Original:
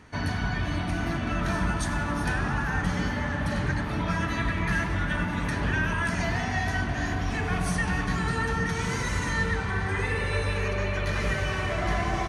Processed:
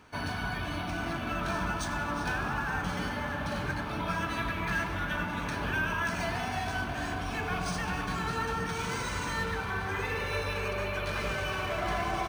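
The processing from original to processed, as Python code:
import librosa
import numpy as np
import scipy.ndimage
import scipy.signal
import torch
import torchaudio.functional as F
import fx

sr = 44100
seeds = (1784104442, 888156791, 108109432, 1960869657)

y = fx.low_shelf(x, sr, hz=330.0, db=-9.5)
y = fx.notch(y, sr, hz=1900.0, q=5.1)
y = np.interp(np.arange(len(y)), np.arange(len(y))[::3], y[::3])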